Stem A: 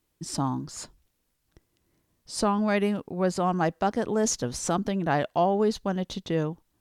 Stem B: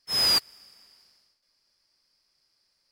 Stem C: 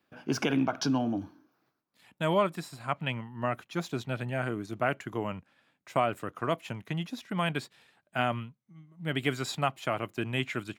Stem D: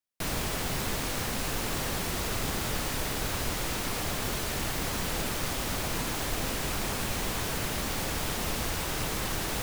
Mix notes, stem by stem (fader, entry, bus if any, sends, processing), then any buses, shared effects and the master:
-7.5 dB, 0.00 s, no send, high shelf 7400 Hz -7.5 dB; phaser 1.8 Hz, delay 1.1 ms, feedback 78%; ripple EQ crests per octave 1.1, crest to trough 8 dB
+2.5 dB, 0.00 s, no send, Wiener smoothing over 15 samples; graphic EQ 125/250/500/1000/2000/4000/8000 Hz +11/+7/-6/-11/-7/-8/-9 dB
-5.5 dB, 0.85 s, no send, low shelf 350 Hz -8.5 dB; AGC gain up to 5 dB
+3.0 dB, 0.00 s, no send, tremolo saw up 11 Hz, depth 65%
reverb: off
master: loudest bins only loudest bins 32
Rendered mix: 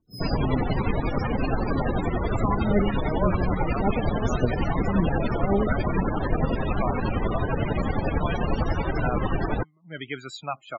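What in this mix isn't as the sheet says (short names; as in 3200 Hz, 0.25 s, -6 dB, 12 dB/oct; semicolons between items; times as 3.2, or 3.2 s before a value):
stem A: missing ripple EQ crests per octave 1.1, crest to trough 8 dB; stem B +2.5 dB -> -6.0 dB; stem D +3.0 dB -> +12.5 dB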